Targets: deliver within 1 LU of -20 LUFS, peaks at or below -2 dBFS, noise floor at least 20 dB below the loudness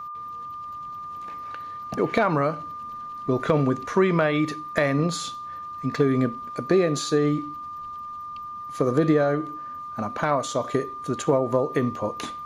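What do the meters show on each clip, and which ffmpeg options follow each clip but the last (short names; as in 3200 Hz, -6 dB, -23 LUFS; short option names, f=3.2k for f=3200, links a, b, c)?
steady tone 1200 Hz; tone level -33 dBFS; loudness -25.5 LUFS; peak -8.0 dBFS; loudness target -20.0 LUFS
-> -af "bandreject=f=1.2k:w=30"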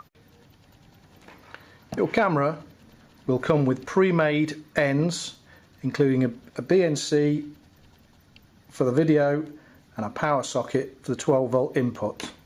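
steady tone none; loudness -24.5 LUFS; peak -8.5 dBFS; loudness target -20.0 LUFS
-> -af "volume=4.5dB"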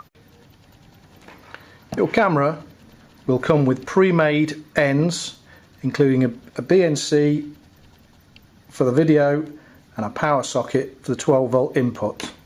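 loudness -20.0 LUFS; peak -4.0 dBFS; noise floor -52 dBFS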